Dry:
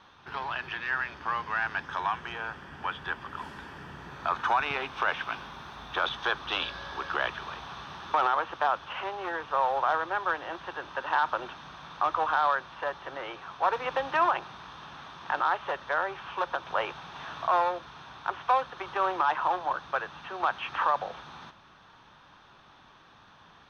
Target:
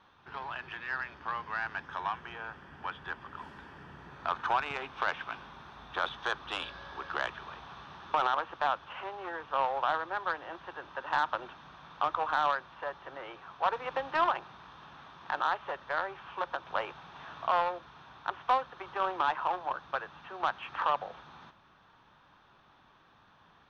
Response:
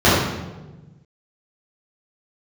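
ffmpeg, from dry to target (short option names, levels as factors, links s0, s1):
-af "aemphasis=mode=reproduction:type=cd,aeval=exprs='0.2*(cos(1*acos(clip(val(0)/0.2,-1,1)))-cos(1*PI/2))+0.0282*(cos(3*acos(clip(val(0)/0.2,-1,1)))-cos(3*PI/2))':c=same,volume=0.891"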